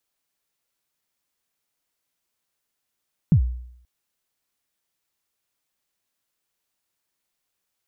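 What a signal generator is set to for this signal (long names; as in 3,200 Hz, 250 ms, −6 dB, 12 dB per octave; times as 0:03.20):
synth kick length 0.53 s, from 190 Hz, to 61 Hz, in 88 ms, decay 0.70 s, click off, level −9.5 dB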